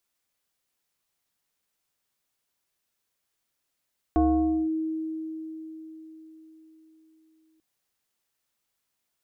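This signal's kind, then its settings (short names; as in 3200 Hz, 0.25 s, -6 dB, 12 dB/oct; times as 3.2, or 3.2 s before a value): FM tone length 3.44 s, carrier 318 Hz, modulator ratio 1.22, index 1, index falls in 0.53 s linear, decay 4.47 s, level -17 dB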